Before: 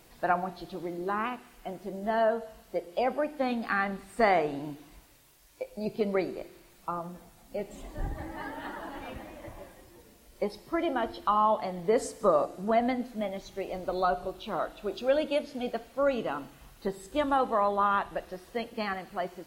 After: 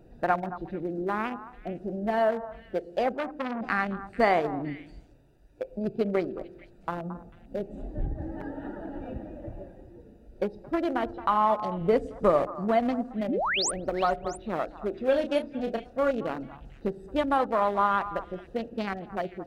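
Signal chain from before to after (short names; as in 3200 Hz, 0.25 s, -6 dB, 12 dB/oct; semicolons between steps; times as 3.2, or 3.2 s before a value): Wiener smoothing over 41 samples; 13.28–13.71 painted sound rise 200–10000 Hz -31 dBFS; 15.04–16.11 doubler 31 ms -7.5 dB; in parallel at +3 dB: compressor, threshold -38 dBFS, peak gain reduction 17.5 dB; 11.81–12.47 on the sum: low shelf 120 Hz +10.5 dB; on a send: delay with a stepping band-pass 0.222 s, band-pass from 1000 Hz, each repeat 1.4 oct, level -11 dB; 3.14–3.61 on the sum: core saturation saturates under 1600 Hz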